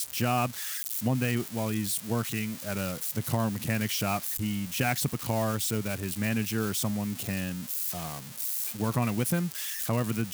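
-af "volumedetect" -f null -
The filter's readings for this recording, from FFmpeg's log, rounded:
mean_volume: -30.1 dB
max_volume: -13.8 dB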